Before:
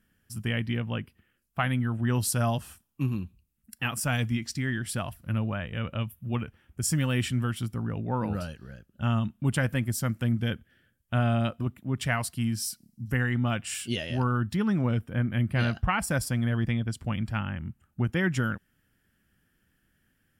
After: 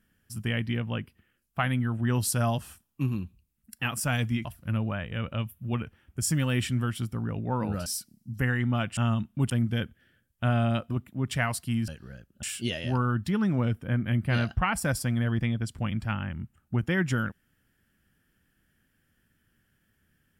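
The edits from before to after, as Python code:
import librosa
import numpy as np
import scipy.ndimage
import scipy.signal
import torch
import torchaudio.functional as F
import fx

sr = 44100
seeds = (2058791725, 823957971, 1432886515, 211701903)

y = fx.edit(x, sr, fx.cut(start_s=4.45, length_s=0.61),
    fx.swap(start_s=8.47, length_s=0.55, other_s=12.58, other_length_s=1.11),
    fx.cut(start_s=9.55, length_s=0.65), tone=tone)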